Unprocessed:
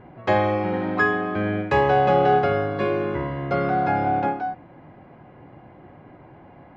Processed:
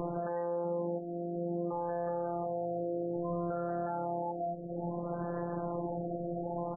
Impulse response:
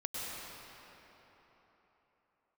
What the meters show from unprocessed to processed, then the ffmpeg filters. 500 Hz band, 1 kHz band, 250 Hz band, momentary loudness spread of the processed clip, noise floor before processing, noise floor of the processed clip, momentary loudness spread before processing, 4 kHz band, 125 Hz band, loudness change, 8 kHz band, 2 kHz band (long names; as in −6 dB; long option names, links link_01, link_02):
−10.5 dB, −15.5 dB, −9.5 dB, 3 LU, −48 dBFS, −39 dBFS, 8 LU, below −40 dB, −11.5 dB, −14.0 dB, can't be measured, −29.0 dB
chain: -filter_complex "[0:a]equalizer=frequency=540:width=1.5:gain=7,acompressor=mode=upward:threshold=-16dB:ratio=2.5,afftfilt=real='hypot(re,im)*cos(PI*b)':imag='0':win_size=1024:overlap=0.75,highshelf=frequency=2100:gain=6,asplit=2[link_01][link_02];[link_02]adelay=1079,lowpass=frequency=820:poles=1,volume=-23dB,asplit=2[link_03][link_04];[link_04]adelay=1079,lowpass=frequency=820:poles=1,volume=0.25[link_05];[link_01][link_03][link_05]amix=inputs=3:normalize=0,acrossover=split=260|2200[link_06][link_07][link_08];[link_08]acompressor=threshold=-59dB:ratio=12[link_09];[link_06][link_07][link_09]amix=inputs=3:normalize=0,alimiter=limit=-23.5dB:level=0:latency=1:release=83,afftfilt=real='re*lt(b*sr/1024,710*pow(1900/710,0.5+0.5*sin(2*PI*0.6*pts/sr)))':imag='im*lt(b*sr/1024,710*pow(1900/710,0.5+0.5*sin(2*PI*0.6*pts/sr)))':win_size=1024:overlap=0.75,volume=-3dB"